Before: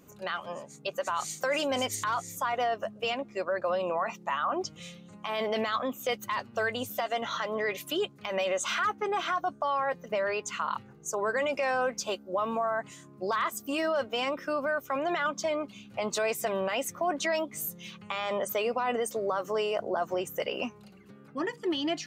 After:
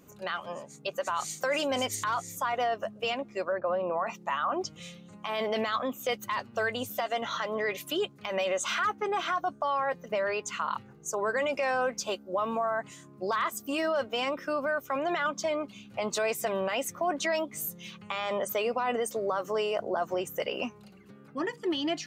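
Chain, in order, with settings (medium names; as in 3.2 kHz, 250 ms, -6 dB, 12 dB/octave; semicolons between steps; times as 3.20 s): 3.52–4.07 s: low-pass 1.6 kHz 12 dB/octave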